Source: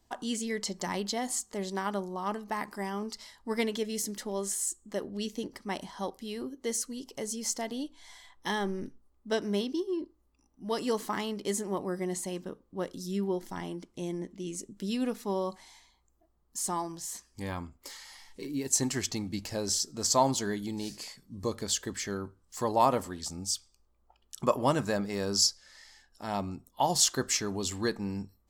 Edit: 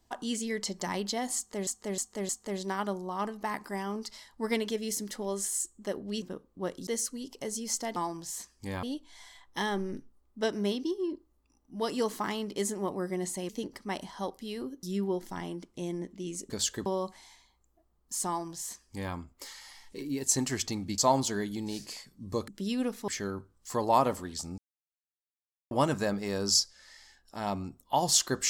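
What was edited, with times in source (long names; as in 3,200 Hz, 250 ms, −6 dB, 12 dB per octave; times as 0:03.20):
0:01.36–0:01.67: repeat, 4 plays
0:05.29–0:06.63: swap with 0:12.38–0:13.03
0:14.70–0:15.30: swap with 0:21.59–0:21.95
0:16.71–0:17.58: duplicate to 0:07.72
0:19.42–0:20.09: remove
0:23.45–0:24.58: silence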